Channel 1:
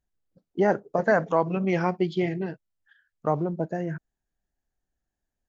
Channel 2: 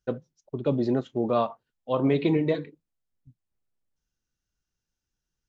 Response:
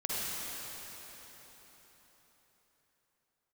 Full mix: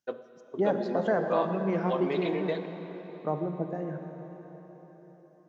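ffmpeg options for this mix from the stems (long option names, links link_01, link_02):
-filter_complex "[0:a]highpass=160,tiltshelf=frequency=1500:gain=6,volume=-12dB,asplit=2[link_01][link_02];[link_02]volume=-8.5dB[link_03];[1:a]highpass=480,alimiter=limit=-18.5dB:level=0:latency=1:release=474,volume=-3dB,asplit=2[link_04][link_05];[link_05]volume=-14.5dB[link_06];[2:a]atrim=start_sample=2205[link_07];[link_03][link_06]amix=inputs=2:normalize=0[link_08];[link_08][link_07]afir=irnorm=-1:irlink=0[link_09];[link_01][link_04][link_09]amix=inputs=3:normalize=0"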